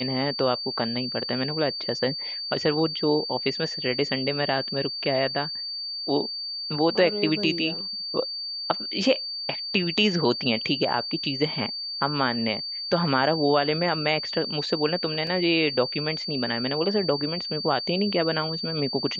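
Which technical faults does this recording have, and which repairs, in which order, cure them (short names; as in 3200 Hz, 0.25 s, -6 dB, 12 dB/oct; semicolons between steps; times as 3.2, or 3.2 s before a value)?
tone 4600 Hz -30 dBFS
15.27 gap 2.6 ms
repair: notch 4600 Hz, Q 30; interpolate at 15.27, 2.6 ms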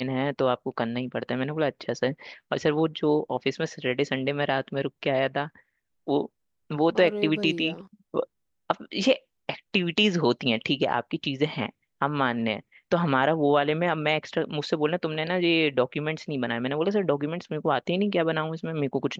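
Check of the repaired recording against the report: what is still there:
none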